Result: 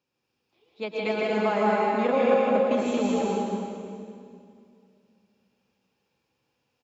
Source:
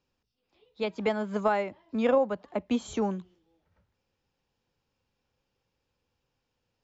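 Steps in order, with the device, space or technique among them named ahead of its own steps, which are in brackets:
stadium PA (high-pass filter 130 Hz 12 dB per octave; parametric band 2,400 Hz +3.5 dB 0.24 octaves; loudspeakers that aren't time-aligned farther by 54 metres −2 dB, 79 metres −2 dB, 98 metres −12 dB; convolution reverb RT60 2.4 s, pre-delay 103 ms, DRR −1.5 dB)
level −2.5 dB

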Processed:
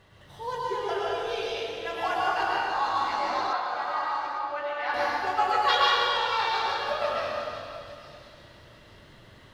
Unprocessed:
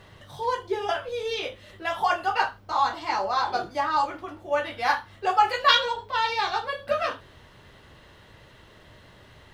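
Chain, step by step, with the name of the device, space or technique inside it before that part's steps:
stairwell (convolution reverb RT60 2.6 s, pre-delay 100 ms, DRR −5.5 dB)
0:03.53–0:04.94: three-way crossover with the lows and the highs turned down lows −13 dB, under 590 Hz, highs −23 dB, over 4,200 Hz
delay with a high-pass on its return 856 ms, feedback 33%, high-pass 4,800 Hz, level −10 dB
level −7.5 dB

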